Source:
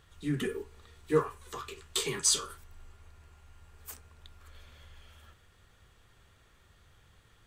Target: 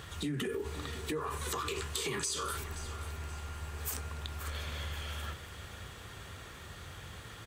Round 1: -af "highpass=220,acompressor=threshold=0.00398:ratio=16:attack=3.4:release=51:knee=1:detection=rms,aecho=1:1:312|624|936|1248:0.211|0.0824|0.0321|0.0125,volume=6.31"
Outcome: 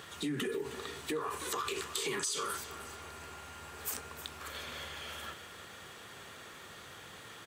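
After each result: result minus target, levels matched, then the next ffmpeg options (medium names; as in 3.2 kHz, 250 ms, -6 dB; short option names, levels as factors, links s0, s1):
125 Hz band -10.0 dB; echo 217 ms early
-af "highpass=64,acompressor=threshold=0.00398:ratio=16:attack=3.4:release=51:knee=1:detection=rms,aecho=1:1:312|624|936|1248:0.211|0.0824|0.0321|0.0125,volume=6.31"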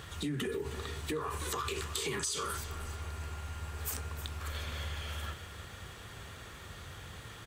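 echo 217 ms early
-af "highpass=64,acompressor=threshold=0.00398:ratio=16:attack=3.4:release=51:knee=1:detection=rms,aecho=1:1:529|1058|1587|2116:0.211|0.0824|0.0321|0.0125,volume=6.31"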